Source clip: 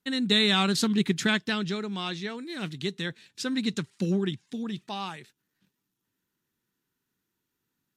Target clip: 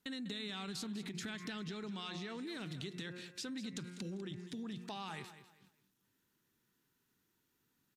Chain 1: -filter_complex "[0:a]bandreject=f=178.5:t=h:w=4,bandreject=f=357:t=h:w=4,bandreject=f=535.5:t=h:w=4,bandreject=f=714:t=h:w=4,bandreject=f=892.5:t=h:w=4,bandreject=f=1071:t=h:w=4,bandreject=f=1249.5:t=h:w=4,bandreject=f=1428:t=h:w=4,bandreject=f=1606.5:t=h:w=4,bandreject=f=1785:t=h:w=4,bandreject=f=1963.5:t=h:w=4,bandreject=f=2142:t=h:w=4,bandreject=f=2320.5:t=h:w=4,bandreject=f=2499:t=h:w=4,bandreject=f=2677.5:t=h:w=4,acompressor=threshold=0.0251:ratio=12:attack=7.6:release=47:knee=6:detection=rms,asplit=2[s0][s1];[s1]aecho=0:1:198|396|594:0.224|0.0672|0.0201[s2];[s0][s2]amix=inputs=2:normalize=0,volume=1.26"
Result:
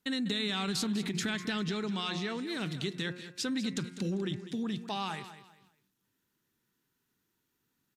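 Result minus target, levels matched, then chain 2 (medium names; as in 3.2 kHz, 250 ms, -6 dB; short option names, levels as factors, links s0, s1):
compression: peak gain reduction -10.5 dB
-filter_complex "[0:a]bandreject=f=178.5:t=h:w=4,bandreject=f=357:t=h:w=4,bandreject=f=535.5:t=h:w=4,bandreject=f=714:t=h:w=4,bandreject=f=892.5:t=h:w=4,bandreject=f=1071:t=h:w=4,bandreject=f=1249.5:t=h:w=4,bandreject=f=1428:t=h:w=4,bandreject=f=1606.5:t=h:w=4,bandreject=f=1785:t=h:w=4,bandreject=f=1963.5:t=h:w=4,bandreject=f=2142:t=h:w=4,bandreject=f=2320.5:t=h:w=4,bandreject=f=2499:t=h:w=4,bandreject=f=2677.5:t=h:w=4,acompressor=threshold=0.00668:ratio=12:attack=7.6:release=47:knee=6:detection=rms,asplit=2[s0][s1];[s1]aecho=0:1:198|396|594:0.224|0.0672|0.0201[s2];[s0][s2]amix=inputs=2:normalize=0,volume=1.26"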